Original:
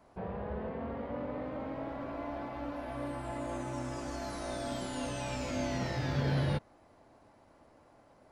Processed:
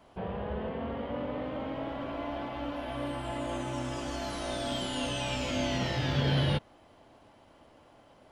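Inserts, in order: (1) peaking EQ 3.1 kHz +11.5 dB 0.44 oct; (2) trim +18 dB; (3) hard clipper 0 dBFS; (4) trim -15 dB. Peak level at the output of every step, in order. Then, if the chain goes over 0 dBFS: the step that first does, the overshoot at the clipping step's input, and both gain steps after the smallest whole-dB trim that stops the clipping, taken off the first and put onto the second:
-20.0 dBFS, -2.0 dBFS, -2.0 dBFS, -17.0 dBFS; nothing clips

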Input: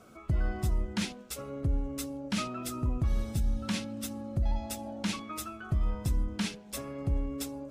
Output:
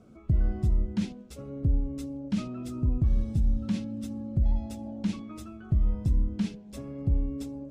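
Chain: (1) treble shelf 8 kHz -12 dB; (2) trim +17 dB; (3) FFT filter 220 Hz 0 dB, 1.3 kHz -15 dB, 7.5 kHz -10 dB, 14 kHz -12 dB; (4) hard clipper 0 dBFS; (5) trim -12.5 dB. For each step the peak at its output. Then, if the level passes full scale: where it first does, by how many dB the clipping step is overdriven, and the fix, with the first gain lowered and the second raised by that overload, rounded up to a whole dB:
-19.0 dBFS, -2.0 dBFS, -2.5 dBFS, -2.5 dBFS, -15.0 dBFS; nothing clips

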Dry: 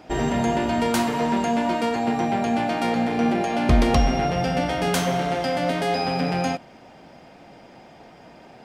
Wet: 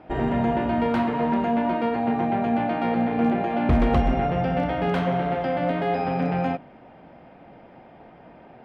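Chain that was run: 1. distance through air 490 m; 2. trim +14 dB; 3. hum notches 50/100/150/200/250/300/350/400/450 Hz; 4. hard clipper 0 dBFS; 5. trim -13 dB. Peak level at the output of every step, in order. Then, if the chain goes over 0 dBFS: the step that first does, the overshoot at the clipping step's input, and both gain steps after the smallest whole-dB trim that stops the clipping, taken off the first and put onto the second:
-7.5 dBFS, +6.5 dBFS, +5.5 dBFS, 0.0 dBFS, -13.0 dBFS; step 2, 5.5 dB; step 2 +8 dB, step 5 -7 dB

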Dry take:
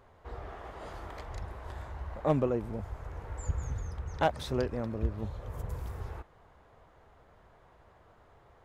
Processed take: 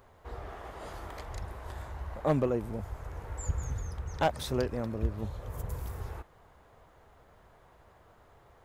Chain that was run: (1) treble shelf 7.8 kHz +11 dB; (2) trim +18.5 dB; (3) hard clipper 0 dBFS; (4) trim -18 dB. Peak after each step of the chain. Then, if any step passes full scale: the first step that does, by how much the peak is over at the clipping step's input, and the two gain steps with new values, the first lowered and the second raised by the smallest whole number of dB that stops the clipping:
-14.5 dBFS, +4.0 dBFS, 0.0 dBFS, -18.0 dBFS; step 2, 4.0 dB; step 2 +14.5 dB, step 4 -14 dB

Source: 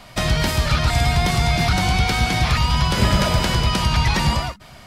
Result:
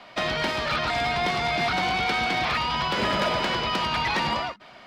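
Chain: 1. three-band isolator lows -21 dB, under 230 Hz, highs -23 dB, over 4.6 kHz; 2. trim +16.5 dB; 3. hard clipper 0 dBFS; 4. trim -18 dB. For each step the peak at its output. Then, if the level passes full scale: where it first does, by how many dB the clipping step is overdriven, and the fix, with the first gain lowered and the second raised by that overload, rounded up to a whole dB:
-7.5 dBFS, +9.0 dBFS, 0.0 dBFS, -18.0 dBFS; step 2, 9.0 dB; step 2 +7.5 dB, step 4 -9 dB

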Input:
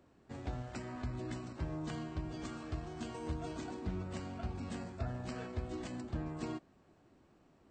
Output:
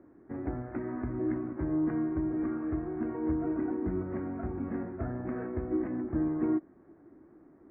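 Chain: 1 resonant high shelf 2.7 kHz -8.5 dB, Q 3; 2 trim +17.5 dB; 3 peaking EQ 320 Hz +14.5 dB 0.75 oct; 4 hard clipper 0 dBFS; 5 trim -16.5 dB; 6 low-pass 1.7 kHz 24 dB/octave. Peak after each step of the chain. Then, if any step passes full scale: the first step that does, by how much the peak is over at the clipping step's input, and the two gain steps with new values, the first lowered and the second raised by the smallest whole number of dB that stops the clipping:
-25.5 dBFS, -8.0 dBFS, -3.5 dBFS, -3.5 dBFS, -20.0 dBFS, -20.0 dBFS; nothing clips

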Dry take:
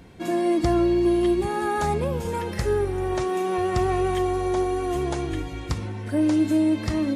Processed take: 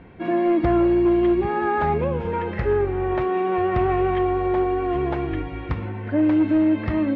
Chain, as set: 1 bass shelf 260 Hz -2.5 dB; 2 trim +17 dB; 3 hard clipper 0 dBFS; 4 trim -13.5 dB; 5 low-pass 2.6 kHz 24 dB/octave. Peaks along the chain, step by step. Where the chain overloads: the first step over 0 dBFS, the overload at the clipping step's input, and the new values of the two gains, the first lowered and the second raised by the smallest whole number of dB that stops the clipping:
-13.0 dBFS, +4.0 dBFS, 0.0 dBFS, -13.5 dBFS, -13.0 dBFS; step 2, 4.0 dB; step 2 +13 dB, step 4 -9.5 dB

